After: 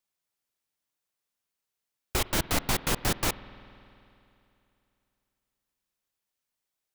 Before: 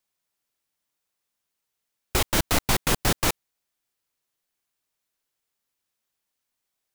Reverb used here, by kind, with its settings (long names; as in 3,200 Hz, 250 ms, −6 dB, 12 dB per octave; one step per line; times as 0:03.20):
spring reverb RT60 2.9 s, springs 50 ms, chirp 55 ms, DRR 15.5 dB
level −4.5 dB